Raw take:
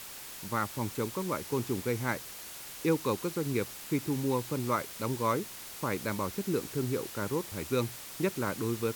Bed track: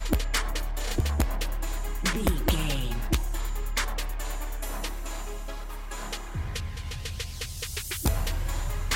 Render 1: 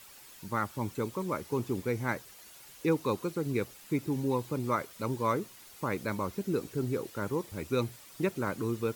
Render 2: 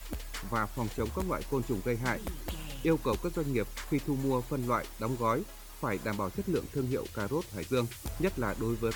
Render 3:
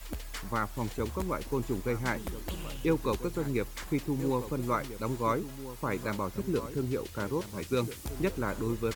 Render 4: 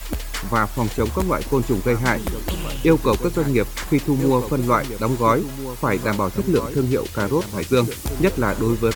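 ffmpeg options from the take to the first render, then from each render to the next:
-af "afftdn=nr=10:nf=-45"
-filter_complex "[1:a]volume=0.211[s0];[0:a][s0]amix=inputs=2:normalize=0"
-filter_complex "[0:a]asplit=2[s0][s1];[s1]adelay=1341,volume=0.251,highshelf=f=4000:g=-30.2[s2];[s0][s2]amix=inputs=2:normalize=0"
-af "volume=3.98"

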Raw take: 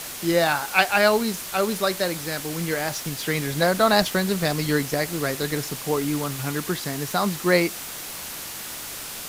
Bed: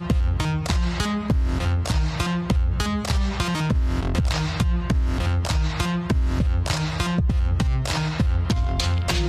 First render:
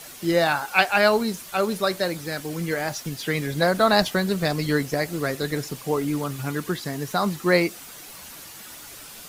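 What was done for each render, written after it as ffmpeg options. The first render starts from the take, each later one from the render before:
-af "afftdn=nr=9:nf=-35"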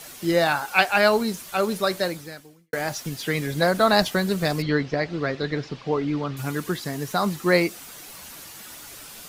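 -filter_complex "[0:a]asettb=1/sr,asplit=3[s0][s1][s2];[s0]atrim=end=4.624[s3];[s1]atrim=start=4.62:end=6.37,asetpts=PTS-STARTPTS,afade=t=in:d=0.004:c=qsin,afade=t=out:st=1.746:d=0.004:c=qsin,lowpass=f=4500:w=0.5412,lowpass=f=4500:w=1.3066[s4];[s2]atrim=start=6.366[s5];[s3][s4]acrossfade=d=0.004:c1=hsin:c2=qsin[s6];[s6][s5]acrossfade=d=0.004:c1=qsin:c2=hsin,asplit=2[s7][s8];[s7]atrim=end=2.73,asetpts=PTS-STARTPTS,afade=t=out:st=2.05:d=0.68:c=qua[s9];[s8]atrim=start=2.73,asetpts=PTS-STARTPTS,afade=t=in:d=0.004:c=hsin[s10];[s9][s10]concat=n=2:v=0:a=1"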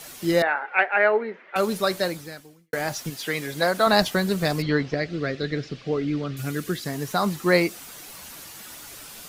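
-filter_complex "[0:a]asettb=1/sr,asplit=3[s0][s1][s2];[s0]atrim=end=0.424[s3];[s1]atrim=start=0.42:end=1.56,asetpts=PTS-STARTPTS,afade=t=in:d=0.004:c=qsin,afade=t=out:st=1.136:d=0.004:c=qsin,highpass=f=300:w=0.5412,highpass=f=300:w=1.3066,equalizer=f=300:t=q:w=4:g=-7,equalizer=f=460:t=q:w=4:g=3,equalizer=f=710:t=q:w=4:g=-3,equalizer=f=1100:t=q:w=4:g=-6,equalizer=f=2000:t=q:w=4:g=8,lowpass=f=2100:w=0.5412,lowpass=f=2100:w=1.3066[s4];[s2]atrim=start=1.556[s5];[s3][s4]acrossfade=d=0.004:c1=hsin:c2=qsin[s6];[s6][s5]acrossfade=d=0.004:c1=qsin:c2=hsin,asettb=1/sr,asplit=3[s7][s8][s9];[s7]atrim=end=3.104[s10];[s8]atrim=start=3.1:end=3.87,asetpts=PTS-STARTPTS,afade=t=in:d=0.004:c=qsin,afade=t=out:st=0.766:d=0.004:c=qsin,lowshelf=f=210:g=-12[s11];[s9]atrim=start=3.866[s12];[s10][s11]acrossfade=d=0.004:c1=hsin:c2=qsin[s13];[s13][s12]acrossfade=d=0.004:c1=qsin:c2=hsin,asettb=1/sr,asplit=3[s14][s15][s16];[s14]atrim=end=4.944[s17];[s15]atrim=start=4.94:end=6.86,asetpts=PTS-STARTPTS,afade=t=in:d=0.004:c=qsin,afade=t=out:st=1.916:d=0.004:c=qsin,equalizer=f=930:t=o:w=0.54:g=-13.5[s18];[s16]atrim=start=6.856[s19];[s17][s18]acrossfade=d=0.004:c1=hsin:c2=qsin[s20];[s20][s19]acrossfade=d=0.004:c1=qsin:c2=hsin"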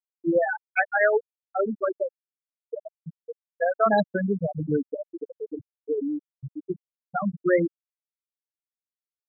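-af "bandreject=f=60:t=h:w=6,bandreject=f=120:t=h:w=6,bandreject=f=180:t=h:w=6,afftfilt=real='re*gte(hypot(re,im),0.398)':imag='im*gte(hypot(re,im),0.398)':win_size=1024:overlap=0.75"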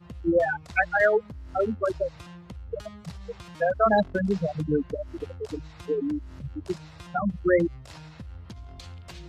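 -filter_complex "[1:a]volume=0.0944[s0];[0:a][s0]amix=inputs=2:normalize=0"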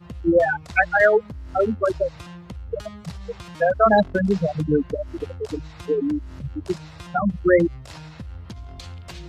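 -af "volume=1.78"

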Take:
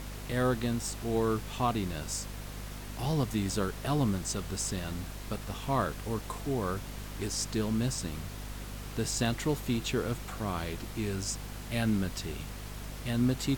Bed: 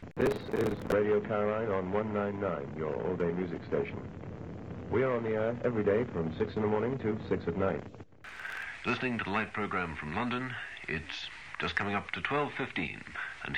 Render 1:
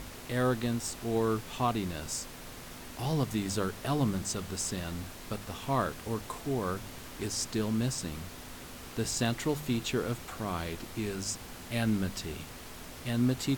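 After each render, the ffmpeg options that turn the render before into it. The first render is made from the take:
-af "bandreject=f=50:t=h:w=4,bandreject=f=100:t=h:w=4,bandreject=f=150:t=h:w=4,bandreject=f=200:t=h:w=4"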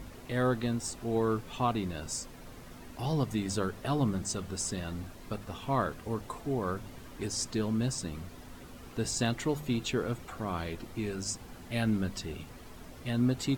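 -af "afftdn=nr=9:nf=-46"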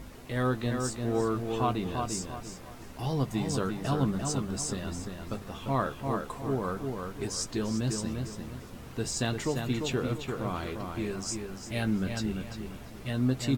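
-filter_complex "[0:a]asplit=2[s0][s1];[s1]adelay=15,volume=0.299[s2];[s0][s2]amix=inputs=2:normalize=0,asplit=2[s3][s4];[s4]adelay=346,lowpass=f=3300:p=1,volume=0.596,asplit=2[s5][s6];[s6]adelay=346,lowpass=f=3300:p=1,volume=0.36,asplit=2[s7][s8];[s8]adelay=346,lowpass=f=3300:p=1,volume=0.36,asplit=2[s9][s10];[s10]adelay=346,lowpass=f=3300:p=1,volume=0.36,asplit=2[s11][s12];[s12]adelay=346,lowpass=f=3300:p=1,volume=0.36[s13];[s3][s5][s7][s9][s11][s13]amix=inputs=6:normalize=0"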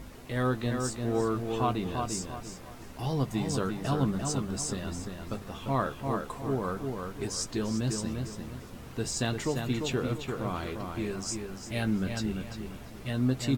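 -af anull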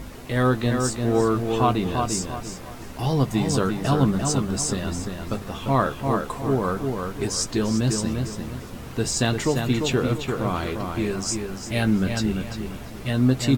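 -af "volume=2.51"

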